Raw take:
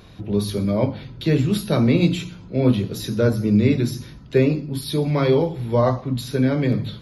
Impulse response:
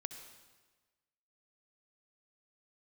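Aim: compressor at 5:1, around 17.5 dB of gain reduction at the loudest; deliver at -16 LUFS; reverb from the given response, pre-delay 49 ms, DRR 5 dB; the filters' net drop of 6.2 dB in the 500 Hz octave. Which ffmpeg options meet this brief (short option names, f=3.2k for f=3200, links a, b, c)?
-filter_complex "[0:a]equalizer=f=500:t=o:g=-8,acompressor=threshold=-34dB:ratio=5,asplit=2[a][b];[1:a]atrim=start_sample=2205,adelay=49[c];[b][c]afir=irnorm=-1:irlink=0,volume=-2.5dB[d];[a][d]amix=inputs=2:normalize=0,volume=19.5dB"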